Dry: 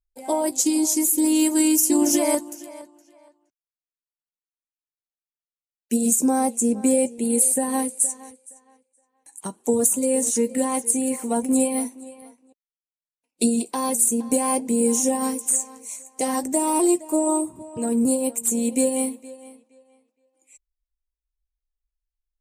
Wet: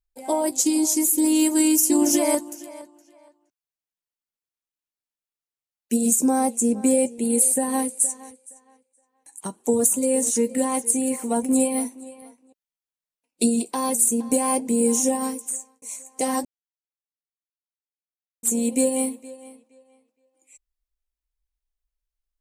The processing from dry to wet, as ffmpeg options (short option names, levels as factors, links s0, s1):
-filter_complex "[0:a]asplit=4[s0][s1][s2][s3];[s0]atrim=end=15.82,asetpts=PTS-STARTPTS,afade=t=out:st=15.09:d=0.73[s4];[s1]atrim=start=15.82:end=16.45,asetpts=PTS-STARTPTS,afade=t=in:d=0.004:c=hsin,afade=t=out:st=0.626:d=0.004:c=hsin[s5];[s2]atrim=start=16.45:end=18.43,asetpts=PTS-STARTPTS,volume=0[s6];[s3]atrim=start=18.43,asetpts=PTS-STARTPTS,afade=t=in:d=0.004:c=hsin[s7];[s4][s5][s6][s7]concat=n=4:v=0:a=1"